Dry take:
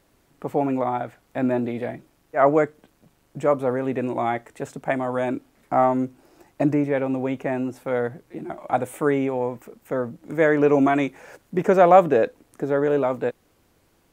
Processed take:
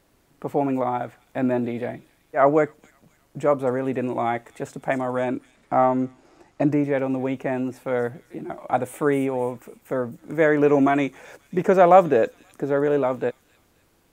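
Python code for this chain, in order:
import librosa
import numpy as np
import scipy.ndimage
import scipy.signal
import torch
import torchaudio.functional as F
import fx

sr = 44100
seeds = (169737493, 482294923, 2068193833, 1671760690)

p1 = fx.lowpass(x, sr, hz=7100.0, slope=12, at=(5.18, 6.72))
y = p1 + fx.echo_wet_highpass(p1, sr, ms=264, feedback_pct=44, hz=5100.0, wet_db=-7.5, dry=0)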